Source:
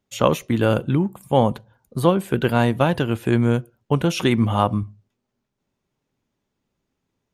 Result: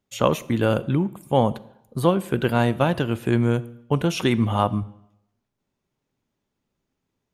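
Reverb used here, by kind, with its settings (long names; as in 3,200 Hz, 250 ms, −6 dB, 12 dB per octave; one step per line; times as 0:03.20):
comb and all-pass reverb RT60 0.79 s, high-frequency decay 0.9×, pre-delay 5 ms, DRR 18.5 dB
level −2 dB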